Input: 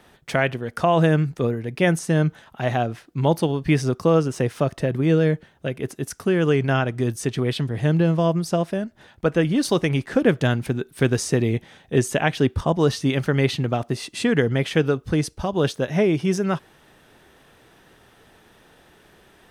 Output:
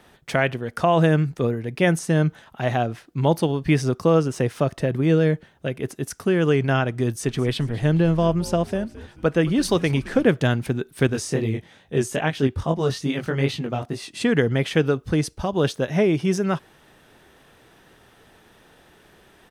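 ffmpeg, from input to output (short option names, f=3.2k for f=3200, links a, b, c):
-filter_complex "[0:a]asplit=3[a][b][c];[a]afade=t=out:st=7.24:d=0.02[d];[b]asplit=5[e][f][g][h][i];[f]adelay=217,afreqshift=-130,volume=-17dB[j];[g]adelay=434,afreqshift=-260,volume=-23.9dB[k];[h]adelay=651,afreqshift=-390,volume=-30.9dB[l];[i]adelay=868,afreqshift=-520,volume=-37.8dB[m];[e][j][k][l][m]amix=inputs=5:normalize=0,afade=t=in:st=7.24:d=0.02,afade=t=out:st=10.27:d=0.02[n];[c]afade=t=in:st=10.27:d=0.02[o];[d][n][o]amix=inputs=3:normalize=0,asettb=1/sr,asplit=3[p][q][r];[p]atrim=end=11.074[s];[q]atrim=start=11.07:end=14.21,asetpts=PTS-STARTPTS,afade=t=in:d=0.004:c=qsin,afade=t=out:st=3.136:d=0.004:c=qsin,flanger=delay=18.5:depth=5.3:speed=2.4[t];[r]atrim=start=14.206[u];[s][t]acrossfade=d=0.004:c1=hsin:c2=qsin[v];[v][u]acrossfade=d=0.004:c1=qsin:c2=hsin"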